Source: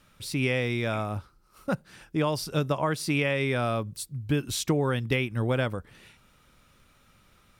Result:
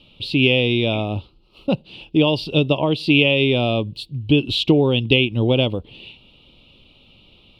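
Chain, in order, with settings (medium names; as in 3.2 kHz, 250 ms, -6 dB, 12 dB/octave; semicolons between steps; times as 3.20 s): FFT filter 180 Hz 0 dB, 310 Hz +5 dB, 950 Hz -3 dB, 1.7 kHz -26 dB, 2.8 kHz +13 dB, 4.3 kHz +3 dB, 6.1 kHz -20 dB, 14 kHz -22 dB; trim +7.5 dB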